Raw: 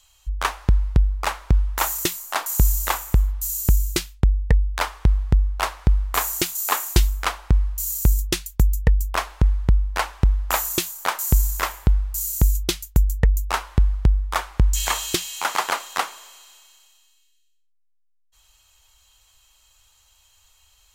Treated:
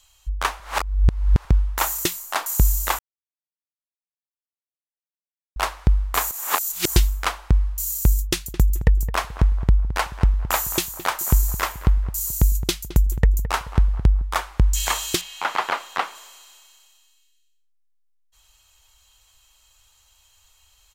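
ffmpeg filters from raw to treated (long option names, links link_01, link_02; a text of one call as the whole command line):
ffmpeg -i in.wav -filter_complex "[0:a]asplit=3[link_01][link_02][link_03];[link_01]afade=type=out:start_time=8.31:duration=0.02[link_04];[link_02]asplit=2[link_05][link_06];[link_06]adelay=216,lowpass=frequency=1600:poles=1,volume=-12dB,asplit=2[link_07][link_08];[link_08]adelay=216,lowpass=frequency=1600:poles=1,volume=0.39,asplit=2[link_09][link_10];[link_10]adelay=216,lowpass=frequency=1600:poles=1,volume=0.39,asplit=2[link_11][link_12];[link_12]adelay=216,lowpass=frequency=1600:poles=1,volume=0.39[link_13];[link_05][link_07][link_09][link_11][link_13]amix=inputs=5:normalize=0,afade=type=in:start_time=8.31:duration=0.02,afade=type=out:start_time=14.22:duration=0.02[link_14];[link_03]afade=type=in:start_time=14.22:duration=0.02[link_15];[link_04][link_14][link_15]amix=inputs=3:normalize=0,asettb=1/sr,asplit=3[link_16][link_17][link_18];[link_16]atrim=end=15.214[link_19];[link_17]atrim=start=15.21:end=16.15,asetpts=PTS-STARTPTS,afade=type=in:duration=0.004:curve=qsin,afade=type=out:start_time=0.936:duration=0.004:curve=qsin,acrossover=split=4000[link_20][link_21];[link_21]acompressor=threshold=-46dB:ratio=4:attack=1:release=60[link_22];[link_20][link_22]amix=inputs=2:normalize=0[link_23];[link_18]atrim=start=16.146[link_24];[link_19][link_23]acrossfade=duration=0.004:curve1=hsin:curve2=qsin[link_25];[link_25][link_24]acrossfade=duration=0.004:curve1=qsin:curve2=hsin,asplit=7[link_26][link_27][link_28][link_29][link_30][link_31][link_32];[link_26]atrim=end=0.602[link_33];[link_27]atrim=start=0.598:end=1.452,asetpts=PTS-STARTPTS,areverse[link_34];[link_28]atrim=start=1.448:end=2.99,asetpts=PTS-STARTPTS,afade=type=out:start_time=1.538:duration=0.004:curve=hsin[link_35];[link_29]atrim=start=2.99:end=5.56,asetpts=PTS-STARTPTS,volume=0[link_36];[link_30]atrim=start=5.56:end=6.312,asetpts=PTS-STARTPTS,afade=type=in:duration=0.004:curve=hsin[link_37];[link_31]atrim=start=6.308:end=6.962,asetpts=PTS-STARTPTS,areverse[link_38];[link_32]atrim=start=6.958[link_39];[link_33][link_34]acrossfade=duration=0.004:curve1=hsin:curve2=hsin[link_40];[link_35][link_36][link_37]concat=n=3:v=0:a=1[link_41];[link_40][link_41]acrossfade=duration=0.004:curve1=hsin:curve2=hsin[link_42];[link_42][link_38]acrossfade=duration=0.004:curve1=hsin:curve2=hsin[link_43];[link_43][link_39]acrossfade=duration=0.004:curve1=hsin:curve2=hsin" out.wav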